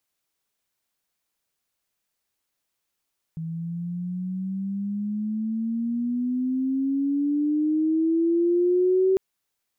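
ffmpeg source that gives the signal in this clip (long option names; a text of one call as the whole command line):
ffmpeg -f lavfi -i "aevalsrc='pow(10,(-16.5+12*(t/5.8-1))/20)*sin(2*PI*161*5.8/(15*log(2)/12)*(exp(15*log(2)/12*t/5.8)-1))':duration=5.8:sample_rate=44100" out.wav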